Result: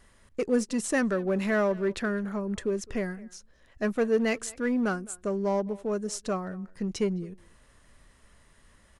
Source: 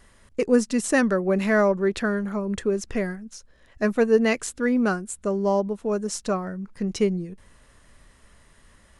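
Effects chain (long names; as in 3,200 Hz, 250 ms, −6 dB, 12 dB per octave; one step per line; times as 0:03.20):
far-end echo of a speakerphone 210 ms, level −22 dB
in parallel at −5 dB: hard clipping −21.5 dBFS, distortion −8 dB
on the sum: level −8 dB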